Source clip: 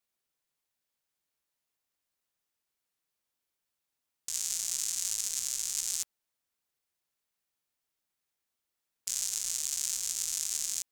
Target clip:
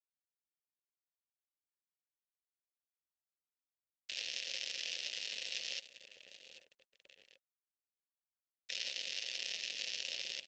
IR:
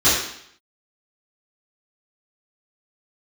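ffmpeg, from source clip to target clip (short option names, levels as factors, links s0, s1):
-filter_complex "[0:a]highshelf=f=6200:g=-6.5,asplit=2[s0][s1];[s1]aecho=0:1:822|1644|2466|3288:0.168|0.0672|0.0269|0.0107[s2];[s0][s2]amix=inputs=2:normalize=0,aeval=exprs='val(0)+0.00708*sin(2*PI*8600*n/s)':c=same,aeval=exprs='val(0)*gte(abs(val(0)),0.0119)':c=same,asetrate=45938,aresample=44100,equalizer=f=125:t=o:w=1:g=10,equalizer=f=250:t=o:w=1:g=8,equalizer=f=2000:t=o:w=1:g=-7,equalizer=f=4000:t=o:w=1:g=8,aresample=22050,aresample=44100,asetrate=34006,aresample=44100,atempo=1.29684,dynaudnorm=f=210:g=13:m=4.73,asplit=3[s3][s4][s5];[s3]bandpass=f=530:t=q:w=8,volume=1[s6];[s4]bandpass=f=1840:t=q:w=8,volume=0.501[s7];[s5]bandpass=f=2480:t=q:w=8,volume=0.355[s8];[s6][s7][s8]amix=inputs=3:normalize=0,volume=1.58" -ar 48000 -c:a libopus -b:a 12k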